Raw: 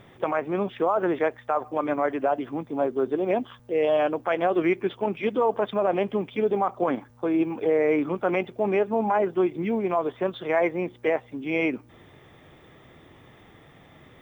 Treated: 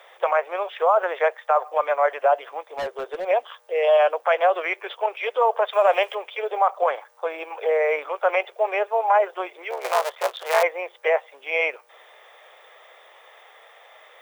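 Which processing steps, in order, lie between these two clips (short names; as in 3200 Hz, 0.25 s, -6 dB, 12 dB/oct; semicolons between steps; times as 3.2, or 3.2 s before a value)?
9.7–10.63 cycle switcher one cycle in 3, muted; steep high-pass 500 Hz 48 dB/oct; 2.75–3.25 hard clip -31 dBFS, distortion -20 dB; 5.73–6.15 high shelf 2100 Hz +11 dB; gain +6 dB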